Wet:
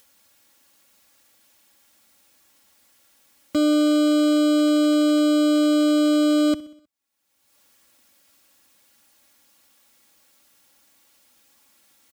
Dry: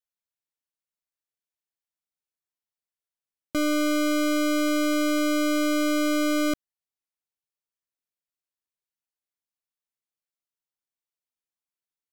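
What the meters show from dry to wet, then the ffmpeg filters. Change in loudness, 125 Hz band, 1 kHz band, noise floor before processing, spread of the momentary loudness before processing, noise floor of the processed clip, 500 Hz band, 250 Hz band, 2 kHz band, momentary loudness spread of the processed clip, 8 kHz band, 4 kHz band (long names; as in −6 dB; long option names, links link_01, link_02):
+5.5 dB, can't be measured, 0.0 dB, below −85 dBFS, 4 LU, −66 dBFS, +4.5 dB, +6.5 dB, −4.5 dB, 4 LU, −1.5 dB, +4.0 dB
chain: -filter_complex "[0:a]acrossover=split=9300[link_01][link_02];[link_02]acompressor=threshold=-50dB:ratio=4:attack=1:release=60[link_03];[link_01][link_03]amix=inputs=2:normalize=0,highpass=75,equalizer=frequency=120:width_type=o:width=1.8:gain=3.5,aecho=1:1:3.6:0.81,acompressor=mode=upward:threshold=-35dB:ratio=2.5,asplit=2[link_04][link_05];[link_05]aecho=0:1:63|126|189|252|315:0.112|0.0617|0.0339|0.0187|0.0103[link_06];[link_04][link_06]amix=inputs=2:normalize=0"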